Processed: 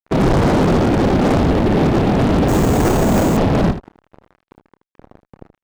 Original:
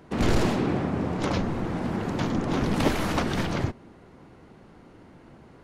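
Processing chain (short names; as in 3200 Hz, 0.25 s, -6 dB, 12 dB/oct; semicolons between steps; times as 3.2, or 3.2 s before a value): steep low-pass 810 Hz 48 dB/oct; notch 440 Hz, Q 12; whisperiser; fuzz box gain 34 dB, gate -43 dBFS; early reflections 30 ms -15.5 dB, 78 ms -11.5 dB; 2.48–3.37 careless resampling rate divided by 6×, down none, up hold; gain +1 dB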